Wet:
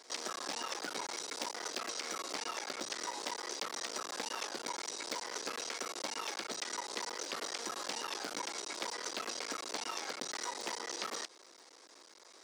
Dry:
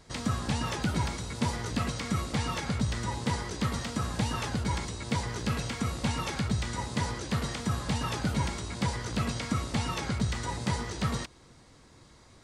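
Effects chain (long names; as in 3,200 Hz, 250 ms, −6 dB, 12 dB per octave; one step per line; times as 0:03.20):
sub-harmonics by changed cycles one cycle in 3, muted
high-pass filter 360 Hz 24 dB per octave
parametric band 5,500 Hz +7.5 dB 0.6 octaves
downward compressor, threshold −37 dBFS, peak gain reduction 7.5 dB
level +1 dB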